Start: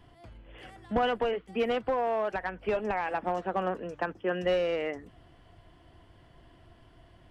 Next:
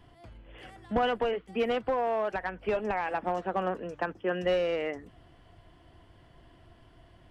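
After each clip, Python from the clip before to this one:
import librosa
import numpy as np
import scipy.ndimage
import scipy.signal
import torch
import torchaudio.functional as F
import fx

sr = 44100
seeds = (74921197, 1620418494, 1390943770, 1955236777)

y = x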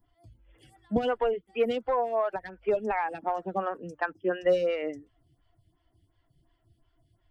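y = fx.bin_expand(x, sr, power=1.5)
y = fx.stagger_phaser(y, sr, hz=2.8)
y = y * librosa.db_to_amplitude(6.0)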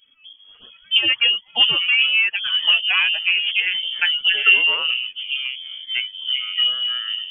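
y = fx.echo_pitch(x, sr, ms=268, semitones=-6, count=3, db_per_echo=-6.0)
y = fx.freq_invert(y, sr, carrier_hz=3300)
y = y * librosa.db_to_amplitude(9.0)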